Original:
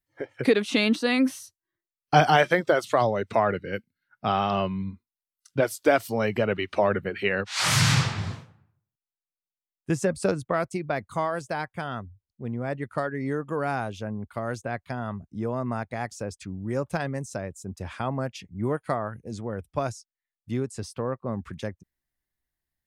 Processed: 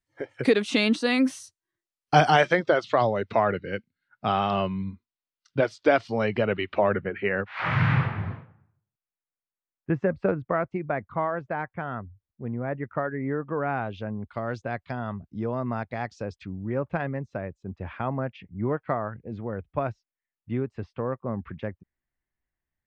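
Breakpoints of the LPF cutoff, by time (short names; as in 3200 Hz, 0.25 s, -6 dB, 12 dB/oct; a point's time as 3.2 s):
LPF 24 dB/oct
2.22 s 9800 Hz
2.77 s 4800 Hz
6.36 s 4800 Hz
7.26 s 2200 Hz
13.61 s 2200 Hz
14.11 s 4600 Hz
16.26 s 4600 Hz
16.71 s 2700 Hz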